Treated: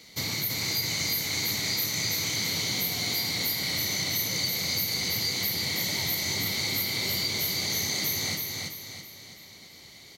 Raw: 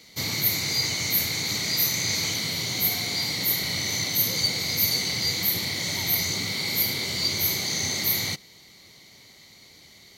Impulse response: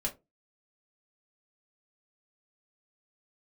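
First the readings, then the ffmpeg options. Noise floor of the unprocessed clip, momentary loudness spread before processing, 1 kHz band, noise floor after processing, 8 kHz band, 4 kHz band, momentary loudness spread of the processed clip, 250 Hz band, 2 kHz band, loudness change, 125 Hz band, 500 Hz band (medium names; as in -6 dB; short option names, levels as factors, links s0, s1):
-52 dBFS, 4 LU, -2.0 dB, -49 dBFS, -2.5 dB, -2.0 dB, 9 LU, -2.0 dB, -2.0 dB, -3.0 dB, -2.5 dB, -2.0 dB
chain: -af "acompressor=threshold=0.0447:ratio=6,aecho=1:1:330|660|990|1320|1650:0.668|0.281|0.118|0.0495|0.0208"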